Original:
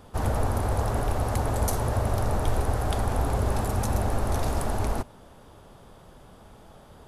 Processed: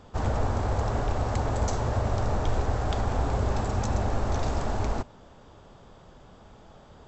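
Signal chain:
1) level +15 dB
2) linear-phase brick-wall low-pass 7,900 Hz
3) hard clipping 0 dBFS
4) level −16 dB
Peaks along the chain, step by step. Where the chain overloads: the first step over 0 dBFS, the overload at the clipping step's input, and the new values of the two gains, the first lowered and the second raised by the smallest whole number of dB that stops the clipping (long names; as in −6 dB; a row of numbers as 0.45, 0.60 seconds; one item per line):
+4.0, +3.5, 0.0, −16.0 dBFS
step 1, 3.5 dB
step 1 +11 dB, step 4 −12 dB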